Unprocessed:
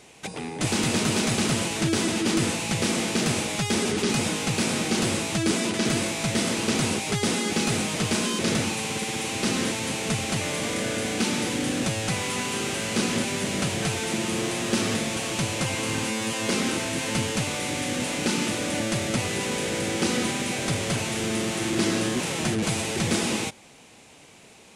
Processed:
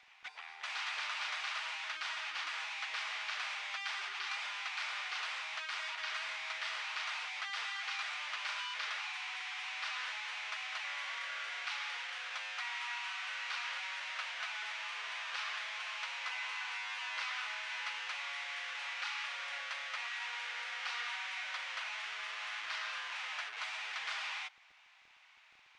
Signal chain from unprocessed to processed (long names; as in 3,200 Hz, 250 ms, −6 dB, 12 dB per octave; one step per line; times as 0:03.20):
high-pass filter 1,100 Hz 24 dB per octave
gate on every frequency bin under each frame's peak −25 dB strong
surface crackle 12 per second −39 dBFS
high-frequency loss of the air 240 metres
echo ahead of the sound 260 ms −20 dB
wrong playback speed 25 fps video run at 24 fps
level −4.5 dB